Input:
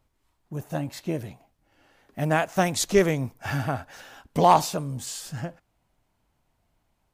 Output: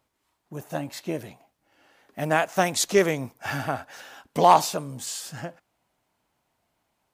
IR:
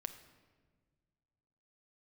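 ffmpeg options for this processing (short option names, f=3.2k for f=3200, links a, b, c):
-af "highpass=f=310:p=1,volume=2dB"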